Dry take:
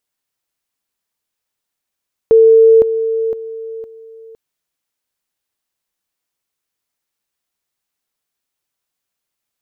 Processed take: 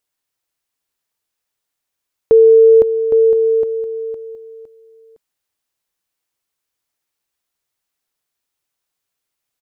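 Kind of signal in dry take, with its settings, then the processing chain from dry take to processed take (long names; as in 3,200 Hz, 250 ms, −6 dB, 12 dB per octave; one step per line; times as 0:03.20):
level staircase 449 Hz −4 dBFS, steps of −10 dB, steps 4, 0.51 s 0.00 s
parametric band 210 Hz −7 dB 0.25 octaves
single-tap delay 813 ms −8.5 dB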